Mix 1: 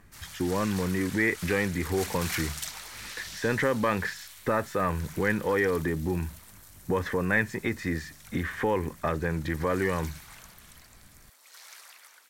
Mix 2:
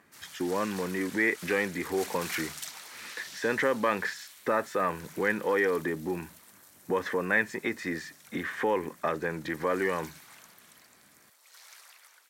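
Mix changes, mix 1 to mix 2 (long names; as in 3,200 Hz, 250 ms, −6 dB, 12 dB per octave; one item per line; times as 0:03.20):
background −3.5 dB
master: add high-pass filter 260 Hz 12 dB per octave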